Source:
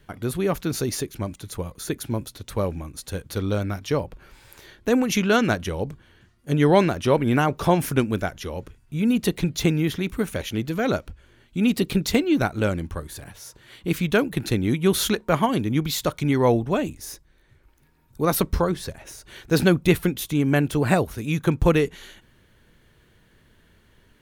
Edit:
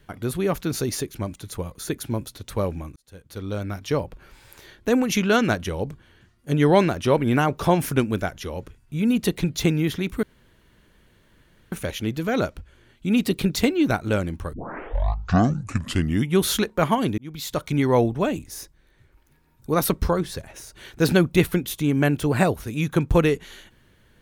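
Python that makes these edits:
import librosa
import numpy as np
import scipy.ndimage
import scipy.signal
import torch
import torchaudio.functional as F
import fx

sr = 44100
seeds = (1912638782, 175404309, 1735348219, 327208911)

y = fx.edit(x, sr, fx.fade_in_span(start_s=2.96, length_s=0.98),
    fx.insert_room_tone(at_s=10.23, length_s=1.49),
    fx.tape_start(start_s=13.04, length_s=1.85),
    fx.fade_in_span(start_s=15.69, length_s=0.5), tone=tone)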